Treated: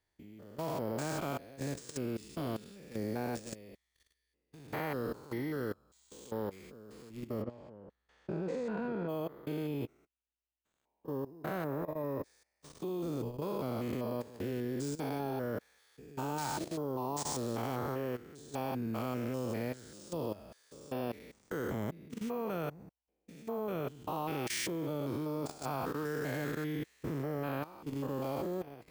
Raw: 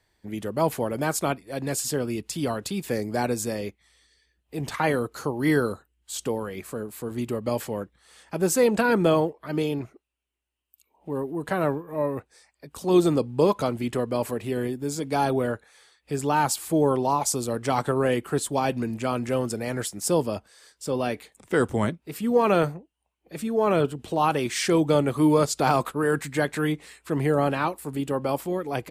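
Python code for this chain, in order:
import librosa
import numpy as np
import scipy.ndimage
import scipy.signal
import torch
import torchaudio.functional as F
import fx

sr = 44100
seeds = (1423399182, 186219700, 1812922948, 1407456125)

y = fx.spec_steps(x, sr, hold_ms=200)
y = np.repeat(y[::3], 3)[:len(y)]
y = fx.spacing_loss(y, sr, db_at_10k=26, at=(7.41, 9.08), fade=0.02)
y = fx.level_steps(y, sr, step_db=16)
y = F.gain(torch.from_numpy(y), -4.0).numpy()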